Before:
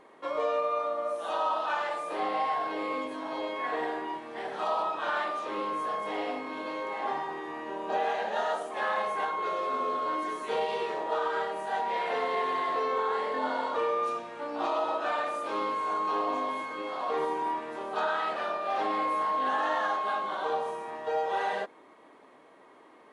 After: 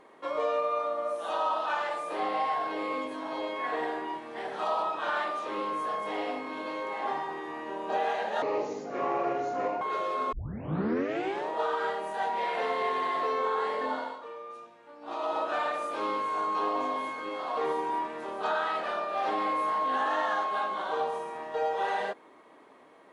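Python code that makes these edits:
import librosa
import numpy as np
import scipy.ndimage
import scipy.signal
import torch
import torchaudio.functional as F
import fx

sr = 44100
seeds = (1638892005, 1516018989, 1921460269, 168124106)

y = fx.edit(x, sr, fx.speed_span(start_s=8.42, length_s=0.92, speed=0.66),
    fx.tape_start(start_s=9.85, length_s=1.17),
    fx.fade_down_up(start_s=13.37, length_s=1.53, db=-14.0, fade_s=0.37), tone=tone)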